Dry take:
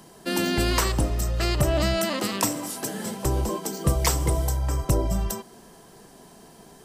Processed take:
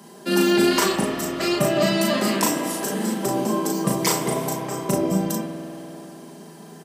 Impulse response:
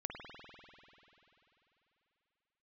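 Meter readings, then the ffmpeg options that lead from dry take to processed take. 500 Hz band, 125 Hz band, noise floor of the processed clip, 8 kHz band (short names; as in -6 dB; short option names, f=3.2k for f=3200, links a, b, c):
+6.0 dB, -4.0 dB, -43 dBFS, +2.5 dB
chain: -filter_complex "[0:a]highpass=f=180:w=0.5412,highpass=f=180:w=1.3066,lowshelf=f=310:g=6,asplit=2[a][b];[b]adelay=37,volume=-3dB[c];[a][c]amix=inputs=2:normalize=0,asplit=2[d][e];[1:a]atrim=start_sample=2205,adelay=5[f];[e][f]afir=irnorm=-1:irlink=0,volume=-1.5dB[g];[d][g]amix=inputs=2:normalize=0"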